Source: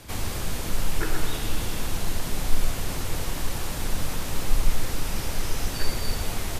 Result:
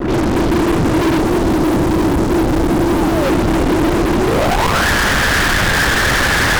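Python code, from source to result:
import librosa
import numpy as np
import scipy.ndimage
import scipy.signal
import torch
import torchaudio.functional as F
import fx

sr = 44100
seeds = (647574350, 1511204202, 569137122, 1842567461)

y = fx.highpass(x, sr, hz=68.0, slope=6)
y = fx.lpc_vocoder(y, sr, seeds[0], excitation='whisper', order=16)
y = y + 10.0 ** (-3.0 / 20.0) * np.pad(y, (int(975 * sr / 1000.0), 0))[:len(y)]
y = fx.spec_paint(y, sr, seeds[1], shape='fall', start_s=2.87, length_s=0.43, low_hz=510.0, high_hz=1100.0, level_db=-24.0)
y = fx.filter_sweep_lowpass(y, sr, from_hz=330.0, to_hz=1700.0, start_s=4.18, end_s=4.86, q=7.3)
y = fx.fuzz(y, sr, gain_db=46.0, gate_db=-48.0)
y = fx.peak_eq(y, sr, hz=2500.0, db=-4.5, octaves=1.8, at=(1.2, 3.24))
y = y + 10.0 ** (-9.5 / 20.0) * np.pad(y, (int(335 * sr / 1000.0), 0))[:len(y)]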